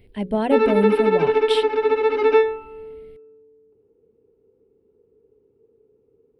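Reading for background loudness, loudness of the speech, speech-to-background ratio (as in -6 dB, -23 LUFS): -19.0 LUFS, -24.0 LUFS, -5.0 dB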